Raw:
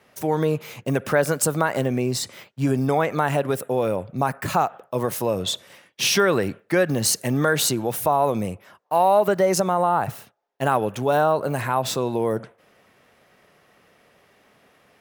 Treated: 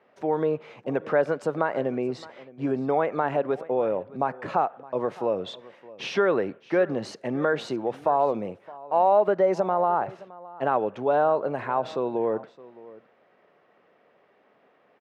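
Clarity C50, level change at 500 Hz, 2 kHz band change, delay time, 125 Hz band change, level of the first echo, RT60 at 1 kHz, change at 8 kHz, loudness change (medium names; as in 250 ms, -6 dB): no reverb, -1.5 dB, -6.5 dB, 616 ms, -12.0 dB, -20.0 dB, no reverb, under -25 dB, -3.5 dB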